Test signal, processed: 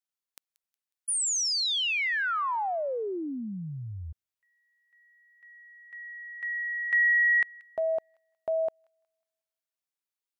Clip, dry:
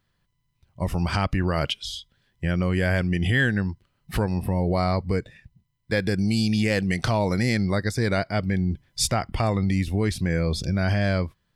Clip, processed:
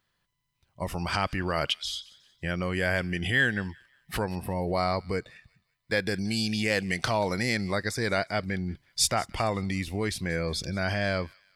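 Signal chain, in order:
low-shelf EQ 320 Hz −10.5 dB
on a send: delay with a high-pass on its return 182 ms, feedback 37%, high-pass 1,900 Hz, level −20.5 dB

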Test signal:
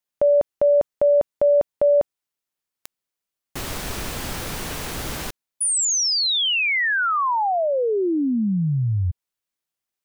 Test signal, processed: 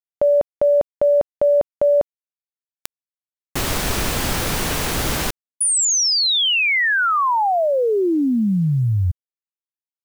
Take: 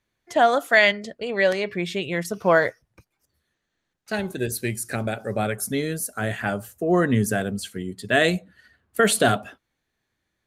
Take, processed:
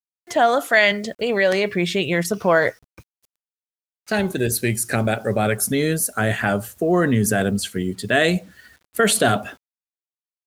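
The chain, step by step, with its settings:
in parallel at −2 dB: compressor whose output falls as the input rises −26 dBFS, ratio −1
on the sum: bit reduction 9 bits

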